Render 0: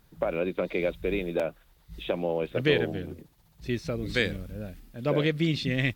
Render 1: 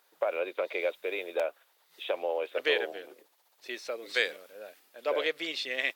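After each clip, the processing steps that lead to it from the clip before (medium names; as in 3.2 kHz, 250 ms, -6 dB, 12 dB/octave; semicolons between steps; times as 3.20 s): high-pass 480 Hz 24 dB/octave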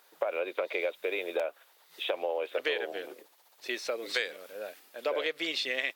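compression 4:1, threshold -34 dBFS, peak gain reduction 11 dB; trim +5.5 dB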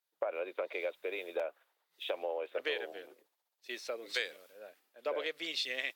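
three bands expanded up and down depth 70%; trim -5.5 dB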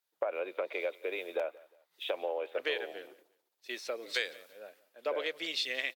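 feedback delay 177 ms, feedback 33%, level -22.5 dB; trim +2 dB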